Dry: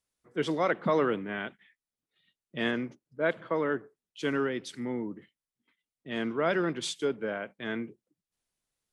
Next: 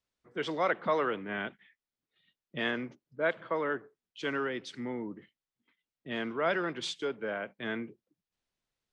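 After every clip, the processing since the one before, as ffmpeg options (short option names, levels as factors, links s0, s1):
-filter_complex "[0:a]lowpass=5200,acrossover=split=500|2600[s0][s1][s2];[s0]alimiter=level_in=2.51:limit=0.0631:level=0:latency=1:release=289,volume=0.398[s3];[s3][s1][s2]amix=inputs=3:normalize=0"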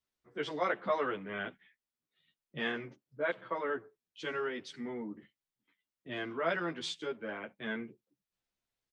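-filter_complex "[0:a]asplit=2[s0][s1];[s1]adelay=10.5,afreqshift=-0.4[s2];[s0][s2]amix=inputs=2:normalize=1"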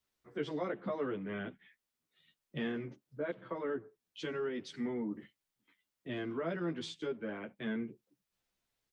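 -filter_complex "[0:a]acrossover=split=400[s0][s1];[s1]acompressor=threshold=0.00282:ratio=3[s2];[s0][s2]amix=inputs=2:normalize=0,volume=1.68"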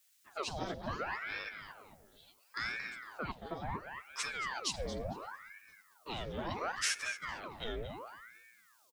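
-filter_complex "[0:a]aexciter=amount=7.9:drive=6.3:freq=3500,asplit=2[s0][s1];[s1]adelay=227,lowpass=f=2500:p=1,volume=0.447,asplit=2[s2][s3];[s3]adelay=227,lowpass=f=2500:p=1,volume=0.43,asplit=2[s4][s5];[s5]adelay=227,lowpass=f=2500:p=1,volume=0.43,asplit=2[s6][s7];[s7]adelay=227,lowpass=f=2500:p=1,volume=0.43,asplit=2[s8][s9];[s9]adelay=227,lowpass=f=2500:p=1,volume=0.43[s10];[s2][s4][s6][s8][s10]amix=inputs=5:normalize=0[s11];[s0][s11]amix=inputs=2:normalize=0,aeval=exprs='val(0)*sin(2*PI*1100*n/s+1100*0.85/0.71*sin(2*PI*0.71*n/s))':c=same"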